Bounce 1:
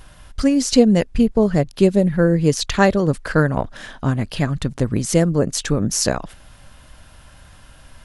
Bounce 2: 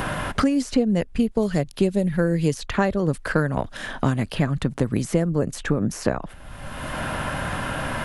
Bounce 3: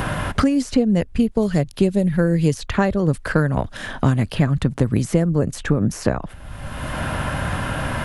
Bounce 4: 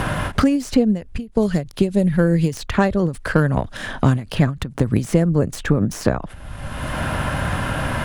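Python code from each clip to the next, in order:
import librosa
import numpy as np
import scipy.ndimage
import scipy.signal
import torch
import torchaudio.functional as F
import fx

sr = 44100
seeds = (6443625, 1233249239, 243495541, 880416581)

y1 = fx.peak_eq(x, sr, hz=5500.0, db=-5.5, octaves=1.3)
y1 = fx.band_squash(y1, sr, depth_pct=100)
y1 = y1 * librosa.db_to_amplitude(-5.0)
y2 = fx.peak_eq(y1, sr, hz=78.0, db=6.5, octaves=2.0)
y2 = y2 * librosa.db_to_amplitude(1.5)
y3 = fx.tracing_dist(y2, sr, depth_ms=0.052)
y3 = fx.end_taper(y3, sr, db_per_s=190.0)
y3 = y3 * librosa.db_to_amplitude(1.5)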